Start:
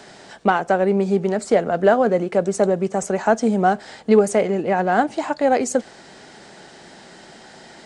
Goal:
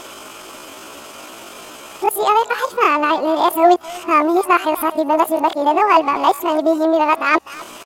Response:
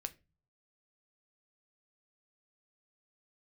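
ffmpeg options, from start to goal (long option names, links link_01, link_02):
-filter_complex "[0:a]areverse,asplit=2[link_01][link_02];[link_02]acompressor=threshold=-28dB:ratio=16,volume=1dB[link_03];[link_01][link_03]amix=inputs=2:normalize=0,asplit=2[link_04][link_05];[link_05]adelay=250,highpass=300,lowpass=3400,asoftclip=type=hard:threshold=-12.5dB,volume=-16dB[link_06];[link_04][link_06]amix=inputs=2:normalize=0,asetrate=72056,aresample=44100,atempo=0.612027,volume=1.5dB"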